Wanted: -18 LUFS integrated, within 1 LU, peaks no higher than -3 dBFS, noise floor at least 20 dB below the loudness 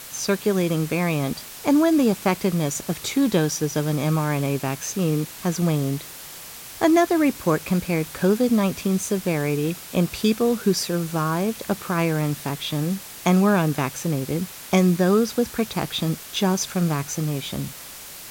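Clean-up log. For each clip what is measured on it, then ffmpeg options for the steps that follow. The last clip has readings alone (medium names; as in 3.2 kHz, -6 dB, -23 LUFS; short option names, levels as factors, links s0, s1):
noise floor -39 dBFS; noise floor target -43 dBFS; loudness -22.5 LUFS; peak level -6.5 dBFS; loudness target -18.0 LUFS
-> -af "afftdn=nr=6:nf=-39"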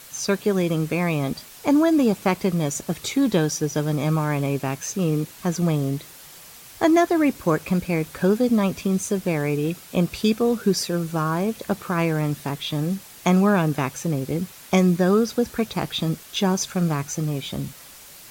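noise floor -44 dBFS; loudness -23.0 LUFS; peak level -6.5 dBFS; loudness target -18.0 LUFS
-> -af "volume=1.78,alimiter=limit=0.708:level=0:latency=1"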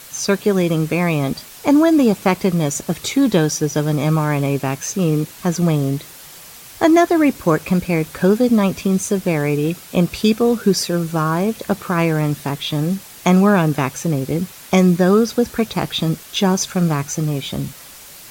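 loudness -18.0 LUFS; peak level -3.0 dBFS; noise floor -39 dBFS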